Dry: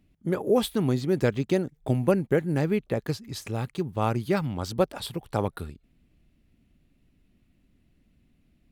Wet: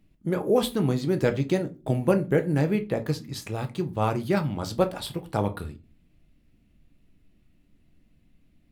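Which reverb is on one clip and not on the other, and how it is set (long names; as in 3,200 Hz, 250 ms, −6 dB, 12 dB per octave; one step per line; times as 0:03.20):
rectangular room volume 120 cubic metres, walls furnished, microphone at 0.61 metres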